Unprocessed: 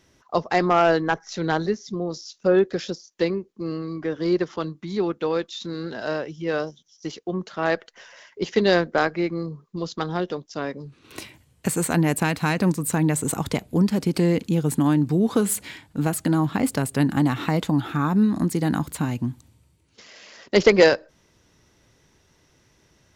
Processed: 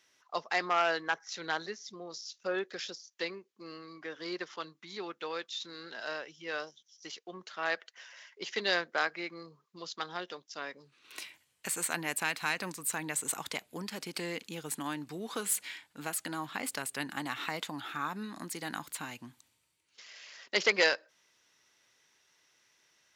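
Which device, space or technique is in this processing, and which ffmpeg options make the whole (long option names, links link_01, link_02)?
filter by subtraction: -filter_complex "[0:a]asplit=2[link_01][link_02];[link_02]lowpass=2200,volume=-1[link_03];[link_01][link_03]amix=inputs=2:normalize=0,volume=-5.5dB"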